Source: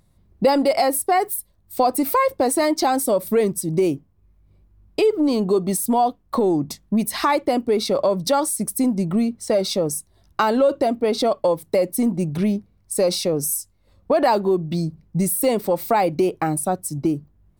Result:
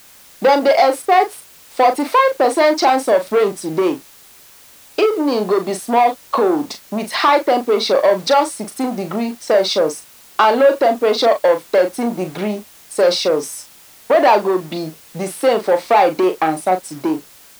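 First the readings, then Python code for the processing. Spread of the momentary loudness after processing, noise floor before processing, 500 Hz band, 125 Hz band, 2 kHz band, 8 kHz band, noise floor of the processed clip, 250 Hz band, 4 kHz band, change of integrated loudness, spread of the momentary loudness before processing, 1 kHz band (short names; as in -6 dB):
12 LU, -60 dBFS, +5.5 dB, -6.5 dB, +8.5 dB, -4.0 dB, -45 dBFS, -0.5 dB, +6.5 dB, +4.5 dB, 6 LU, +7.0 dB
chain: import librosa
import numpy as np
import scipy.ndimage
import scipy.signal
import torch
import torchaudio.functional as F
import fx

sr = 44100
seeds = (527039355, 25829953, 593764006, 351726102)

y = fx.leveller(x, sr, passes=2)
y = fx.bandpass_edges(y, sr, low_hz=420.0, high_hz=4300.0)
y = fx.dmg_noise_colour(y, sr, seeds[0], colour='white', level_db=-47.0)
y = fx.doubler(y, sr, ms=38.0, db=-8.5)
y = F.gain(torch.from_numpy(y), 2.0).numpy()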